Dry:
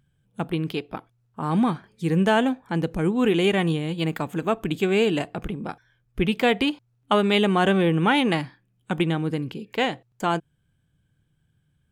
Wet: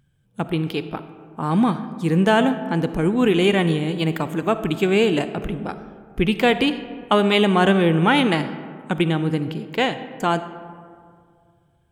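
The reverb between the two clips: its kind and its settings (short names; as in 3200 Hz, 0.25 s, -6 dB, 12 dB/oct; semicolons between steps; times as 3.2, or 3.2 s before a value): digital reverb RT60 2.2 s, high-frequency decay 0.4×, pre-delay 15 ms, DRR 11.5 dB; gain +3 dB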